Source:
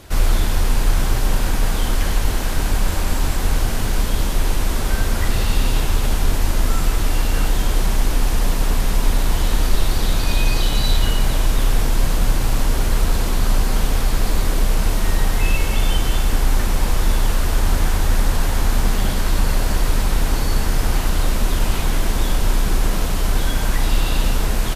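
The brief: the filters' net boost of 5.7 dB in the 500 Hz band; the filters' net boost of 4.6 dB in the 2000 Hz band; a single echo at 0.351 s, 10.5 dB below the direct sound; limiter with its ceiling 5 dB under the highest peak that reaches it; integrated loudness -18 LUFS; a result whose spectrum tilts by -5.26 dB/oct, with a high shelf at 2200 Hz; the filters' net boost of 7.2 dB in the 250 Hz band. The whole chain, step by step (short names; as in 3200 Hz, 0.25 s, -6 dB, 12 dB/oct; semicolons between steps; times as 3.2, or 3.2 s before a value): bell 250 Hz +8 dB; bell 500 Hz +4.5 dB; bell 2000 Hz +8 dB; high shelf 2200 Hz -4.5 dB; limiter -8 dBFS; echo 0.351 s -10.5 dB; gain +3 dB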